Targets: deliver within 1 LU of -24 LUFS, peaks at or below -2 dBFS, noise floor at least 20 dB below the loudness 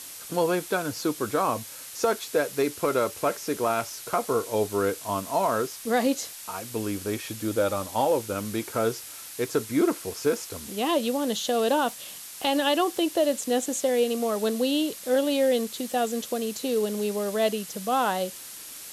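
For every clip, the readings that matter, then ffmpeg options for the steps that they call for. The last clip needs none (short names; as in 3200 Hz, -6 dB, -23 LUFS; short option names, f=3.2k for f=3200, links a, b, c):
noise floor -42 dBFS; noise floor target -47 dBFS; loudness -26.5 LUFS; peak -12.5 dBFS; loudness target -24.0 LUFS
-> -af "afftdn=nr=6:nf=-42"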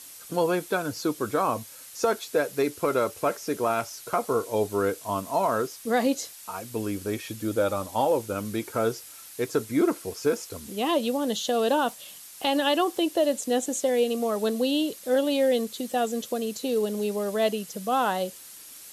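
noise floor -46 dBFS; noise floor target -47 dBFS
-> -af "afftdn=nr=6:nf=-46"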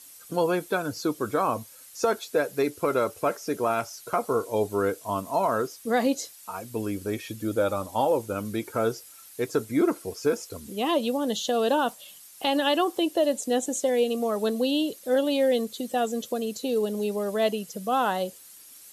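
noise floor -49 dBFS; loudness -27.0 LUFS; peak -13.0 dBFS; loudness target -24.0 LUFS
-> -af "volume=3dB"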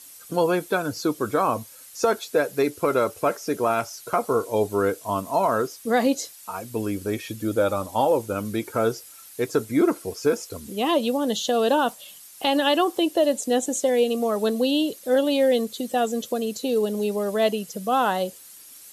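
loudness -24.0 LUFS; peak -10.0 dBFS; noise floor -46 dBFS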